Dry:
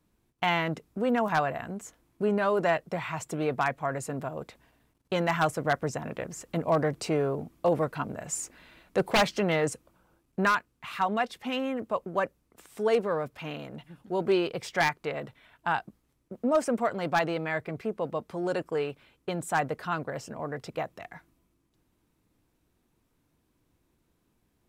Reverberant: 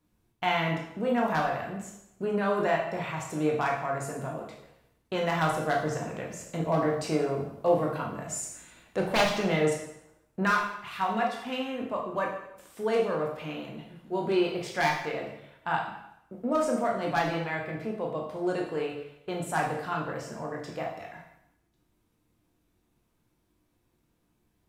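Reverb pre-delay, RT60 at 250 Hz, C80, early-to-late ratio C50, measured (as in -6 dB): 7 ms, 0.80 s, 7.5 dB, 4.0 dB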